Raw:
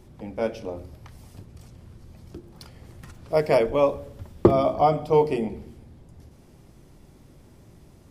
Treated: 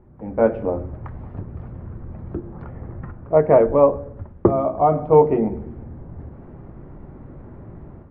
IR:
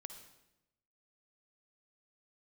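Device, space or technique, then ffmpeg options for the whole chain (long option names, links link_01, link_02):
action camera in a waterproof case: -filter_complex "[0:a]asettb=1/sr,asplit=3[link_01][link_02][link_03];[link_01]atrim=end=2.524[link_04];[link_02]atrim=start=2.52:end=4.17,asetpts=PTS-STARTPTS,afade=type=in:duration=0.004:curve=qsin,afade=type=out:start_time=1.646:duration=0.004:curve=qsin,lowpass=frequency=2100:poles=1[link_05];[link_03]atrim=start=4.166[link_06];[link_04][link_05]acrossfade=duration=0.004:curve1=hsin:curve2=qsin[link_07];[link_07][link_06]acrossfade=duration=0.004:curve1=qsin:curve2=hsin,lowpass=frequency=1600:width=0.5412,lowpass=frequency=1600:width=1.3066,dynaudnorm=framelen=200:gausssize=3:maxgain=13dB,volume=-1dB" -ar 32000 -c:a aac -b:a 64k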